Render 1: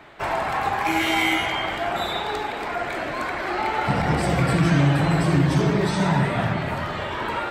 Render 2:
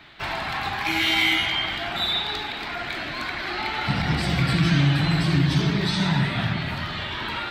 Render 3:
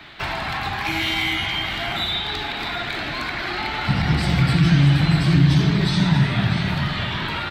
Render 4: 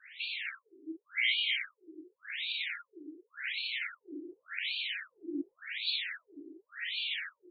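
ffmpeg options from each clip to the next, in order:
-af "equalizer=f=500:t=o:w=1:g=-11,equalizer=f=1k:t=o:w=1:g=-4,equalizer=f=4k:t=o:w=1:g=10,equalizer=f=8k:t=o:w=1:g=-7"
-filter_complex "[0:a]acrossover=split=190[a][b];[b]acompressor=threshold=-33dB:ratio=2[c];[a][c]amix=inputs=2:normalize=0,aecho=1:1:639:0.335,volume=6dB"
-af "asuperstop=centerf=750:order=8:qfactor=0.52,afftfilt=real='re*between(b*sr/1024,380*pow(3300/380,0.5+0.5*sin(2*PI*0.89*pts/sr))/1.41,380*pow(3300/380,0.5+0.5*sin(2*PI*0.89*pts/sr))*1.41)':imag='im*between(b*sr/1024,380*pow(3300/380,0.5+0.5*sin(2*PI*0.89*pts/sr))/1.41,380*pow(3300/380,0.5+0.5*sin(2*PI*0.89*pts/sr))*1.41)':win_size=1024:overlap=0.75,volume=-4dB"

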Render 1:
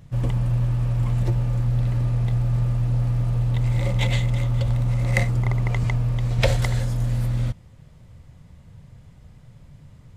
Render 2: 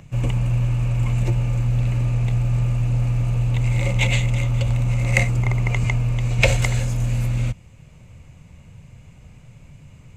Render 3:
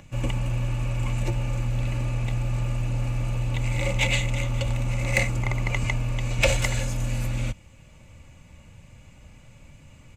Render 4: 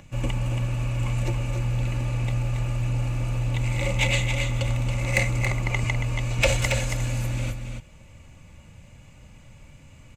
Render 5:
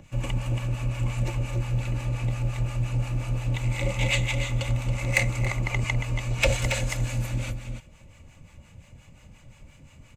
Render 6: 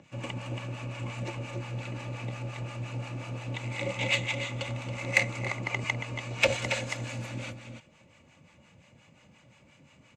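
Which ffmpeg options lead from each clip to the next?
-filter_complex "[0:a]superequalizer=12b=2.82:15b=2.24,acrossover=split=120|2200[a][b][c];[b]acompressor=mode=upward:threshold=-47dB:ratio=2.5[d];[a][d][c]amix=inputs=3:normalize=0,volume=1.5dB"
-af "lowshelf=f=440:g=-4,asoftclip=type=tanh:threshold=-11.5dB,aecho=1:1:3.5:0.39"
-af "aecho=1:1:277:0.447"
-filter_complex "[0:a]acrossover=split=660[a][b];[a]aeval=exprs='val(0)*(1-0.7/2+0.7/2*cos(2*PI*5.7*n/s))':c=same[c];[b]aeval=exprs='val(0)*(1-0.7/2-0.7/2*cos(2*PI*5.7*n/s))':c=same[d];[c][d]amix=inputs=2:normalize=0,volume=1.5dB"
-af "highpass=180,lowpass=6k,aeval=exprs='0.422*(cos(1*acos(clip(val(0)/0.422,-1,1)))-cos(1*PI/2))+0.0119*(cos(7*acos(clip(val(0)/0.422,-1,1)))-cos(7*PI/2))':c=same"

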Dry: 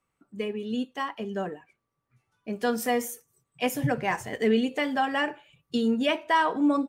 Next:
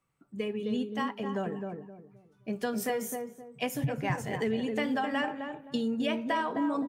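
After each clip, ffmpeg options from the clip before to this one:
-filter_complex "[0:a]equalizer=f=140:w=2.7:g=8.5,acompressor=threshold=-26dB:ratio=6,asplit=2[a][b];[b]adelay=261,lowpass=f=830:p=1,volume=-3.5dB,asplit=2[c][d];[d]adelay=261,lowpass=f=830:p=1,volume=0.31,asplit=2[e][f];[f]adelay=261,lowpass=f=830:p=1,volume=0.31,asplit=2[g][h];[h]adelay=261,lowpass=f=830:p=1,volume=0.31[i];[a][c][e][g][i]amix=inputs=5:normalize=0,volume=-1.5dB"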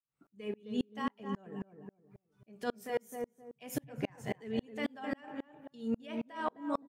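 -af "alimiter=limit=-23dB:level=0:latency=1:release=54,aeval=exprs='val(0)*pow(10,-37*if(lt(mod(-3.7*n/s,1),2*abs(-3.7)/1000),1-mod(-3.7*n/s,1)/(2*abs(-3.7)/1000),(mod(-3.7*n/s,1)-2*abs(-3.7)/1000)/(1-2*abs(-3.7)/1000))/20)':c=same,volume=3.5dB"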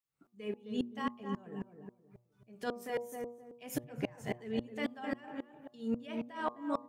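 -af "bandreject=f=119.7:t=h:w=4,bandreject=f=239.4:t=h:w=4,bandreject=f=359.1:t=h:w=4,bandreject=f=478.8:t=h:w=4,bandreject=f=598.5:t=h:w=4,bandreject=f=718.2:t=h:w=4,bandreject=f=837.9:t=h:w=4,bandreject=f=957.6:t=h:w=4,bandreject=f=1.0773k:t=h:w=4,bandreject=f=1.197k:t=h:w=4"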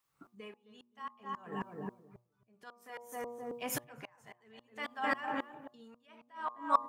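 -filter_complex "[0:a]acrossover=split=770[a][b];[a]acompressor=threshold=-47dB:ratio=10[c];[c][b]amix=inputs=2:normalize=0,equalizer=f=1.1k:w=1.6:g=9,aeval=exprs='val(0)*pow(10,-24*(0.5-0.5*cos(2*PI*0.57*n/s))/20)':c=same,volume=10.5dB"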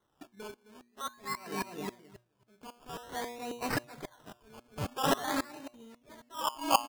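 -af "aecho=1:1:3:0.43,acrusher=samples=18:mix=1:aa=0.000001:lfo=1:lforange=10.8:lforate=0.48,volume=4dB"

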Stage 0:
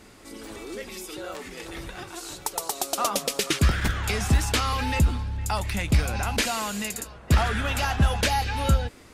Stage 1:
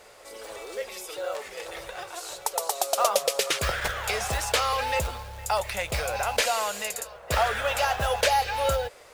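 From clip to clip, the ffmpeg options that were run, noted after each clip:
-af "acrusher=bits=6:mode=log:mix=0:aa=0.000001,lowshelf=f=380:t=q:w=3:g=-11.5"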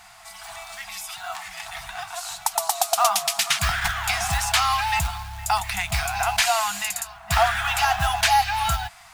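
-af "afftfilt=real='re*(1-between(b*sr/4096,210,650))':imag='im*(1-between(b*sr/4096,210,650))':win_size=4096:overlap=0.75,volume=5dB"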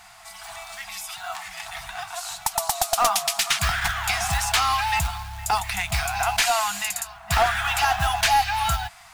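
-af "aeval=exprs='clip(val(0),-1,0.158)':c=same"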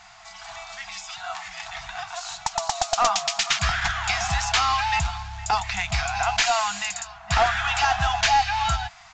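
-af "aresample=16000,aresample=44100"

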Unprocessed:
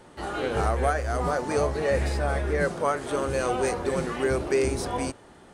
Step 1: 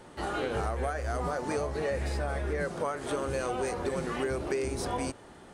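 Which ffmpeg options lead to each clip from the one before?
-af "acompressor=threshold=-28dB:ratio=6"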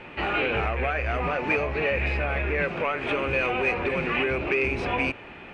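-af "asoftclip=type=tanh:threshold=-25.5dB,lowpass=f=2.5k:t=q:w=10,volume=5.5dB"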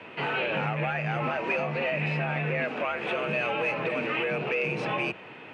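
-filter_complex "[0:a]asplit=2[a][b];[b]alimiter=limit=-19.5dB:level=0:latency=1,volume=0dB[c];[a][c]amix=inputs=2:normalize=0,afreqshift=82,volume=-8dB"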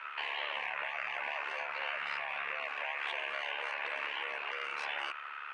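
-af "tremolo=f=72:d=0.788,highpass=f=1.3k:t=q:w=8,afftfilt=real='re*lt(hypot(re,im),0.0708)':imag='im*lt(hypot(re,im),0.0708)':win_size=1024:overlap=0.75"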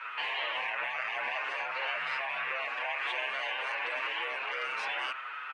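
-filter_complex "[0:a]asplit=2[a][b];[b]adelay=7,afreqshift=2.7[c];[a][c]amix=inputs=2:normalize=1,volume=6.5dB"

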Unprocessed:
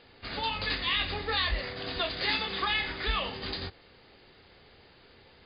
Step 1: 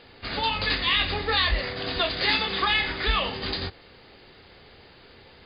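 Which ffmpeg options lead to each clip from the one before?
-af "acontrast=49"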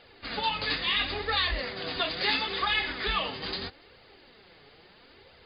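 -af "lowshelf=f=120:g=-5.5,flanger=delay=1.3:depth=6:regen=34:speed=0.75:shape=triangular"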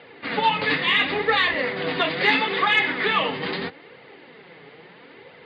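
-af "highpass=f=120:w=0.5412,highpass=f=120:w=1.3066,equalizer=f=160:t=q:w=4:g=7,equalizer=f=280:t=q:w=4:g=5,equalizer=f=470:t=q:w=4:g=6,equalizer=f=940:t=q:w=4:g=4,equalizer=f=2k:t=q:w=4:g=6,lowpass=f=3.4k:w=0.5412,lowpass=f=3.4k:w=1.3066,acontrast=66"

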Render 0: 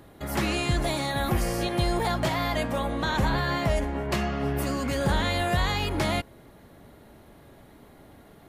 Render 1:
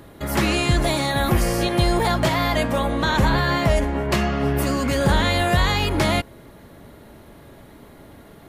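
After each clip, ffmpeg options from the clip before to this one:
-af "bandreject=f=760:w=13,volume=6.5dB"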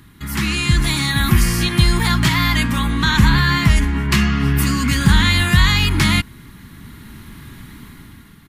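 -af "dynaudnorm=f=200:g=7:m=9.5dB,firequalizer=gain_entry='entry(210,0);entry(570,-26);entry(1000,-5);entry(1900,0)':delay=0.05:min_phase=1,volume=1dB"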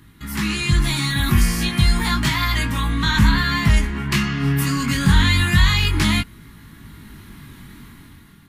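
-af "flanger=delay=18.5:depth=3.2:speed=0.31"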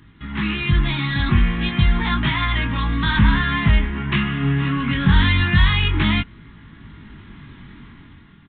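-af "aresample=8000,aresample=44100"

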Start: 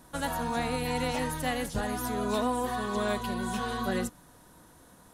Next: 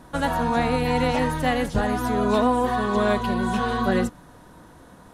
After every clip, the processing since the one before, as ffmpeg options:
-af "lowpass=f=2.5k:p=1,volume=9dB"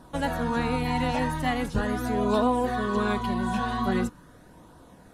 -af "flanger=delay=0.2:depth=1:regen=-51:speed=0.42:shape=triangular"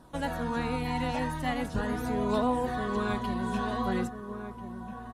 -filter_complex "[0:a]asplit=2[a][b];[b]adelay=1341,volume=-8dB,highshelf=f=4k:g=-30.2[c];[a][c]amix=inputs=2:normalize=0,volume=-4.5dB"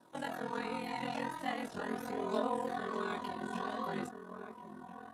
-af "highpass=270,aeval=exprs='val(0)*sin(2*PI*21*n/s)':c=same,flanger=delay=17.5:depth=5.1:speed=1.3"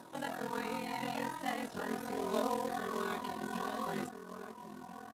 -af "acompressor=mode=upward:threshold=-45dB:ratio=2.5,acrusher=bits=3:mode=log:mix=0:aa=0.000001,aresample=32000,aresample=44100"

